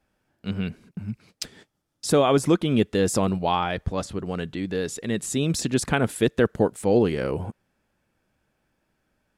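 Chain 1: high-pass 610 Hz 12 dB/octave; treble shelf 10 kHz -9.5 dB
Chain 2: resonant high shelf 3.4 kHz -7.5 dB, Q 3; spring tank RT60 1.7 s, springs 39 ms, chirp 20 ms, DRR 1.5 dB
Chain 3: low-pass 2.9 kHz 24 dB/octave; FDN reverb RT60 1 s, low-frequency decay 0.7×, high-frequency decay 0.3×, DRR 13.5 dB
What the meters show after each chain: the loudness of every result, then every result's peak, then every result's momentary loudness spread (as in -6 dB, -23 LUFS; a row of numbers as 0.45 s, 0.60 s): -30.0 LUFS, -22.0 LUFS, -24.0 LUFS; -7.0 dBFS, -6.0 dBFS, -6.5 dBFS; 15 LU, 16 LU, 14 LU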